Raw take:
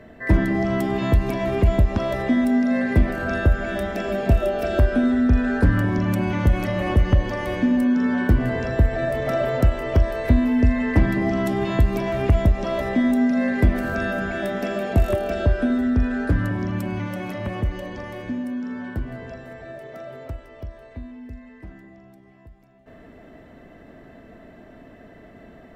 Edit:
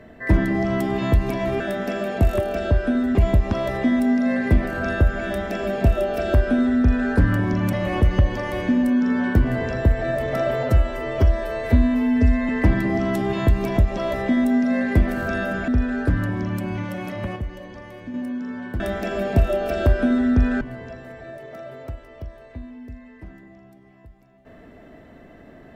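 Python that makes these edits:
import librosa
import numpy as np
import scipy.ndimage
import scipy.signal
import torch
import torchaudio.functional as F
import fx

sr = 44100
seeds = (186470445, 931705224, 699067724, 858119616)

y = fx.edit(x, sr, fx.duplicate(start_s=3.73, length_s=1.81, to_s=19.02),
    fx.cut(start_s=6.18, length_s=0.49),
    fx.stretch_span(start_s=9.57, length_s=1.24, factor=1.5),
    fx.cut(start_s=12.09, length_s=0.35),
    fx.move(start_s=14.35, length_s=1.55, to_s=1.6),
    fx.clip_gain(start_s=17.58, length_s=0.78, db=-5.5), tone=tone)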